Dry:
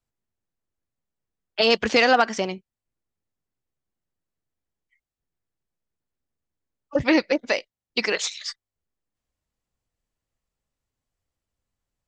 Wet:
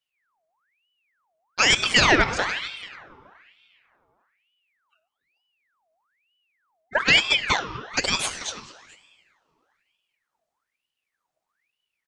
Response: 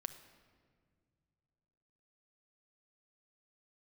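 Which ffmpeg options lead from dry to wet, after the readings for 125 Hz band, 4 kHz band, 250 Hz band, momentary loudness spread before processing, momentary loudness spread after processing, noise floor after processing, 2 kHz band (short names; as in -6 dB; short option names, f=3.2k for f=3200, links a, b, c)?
+6.0 dB, +5.5 dB, -6.0 dB, 15 LU, 17 LU, -84 dBFS, +4.5 dB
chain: -filter_complex "[0:a]asplit=2[a][b];[b]adelay=437.3,volume=-16dB,highshelf=f=4k:g=-9.84[c];[a][c]amix=inputs=2:normalize=0[d];[1:a]atrim=start_sample=2205,asetrate=42777,aresample=44100[e];[d][e]afir=irnorm=-1:irlink=0,aeval=exprs='val(0)*sin(2*PI*1800*n/s+1800*0.65/1.1*sin(2*PI*1.1*n/s))':c=same,volume=5.5dB"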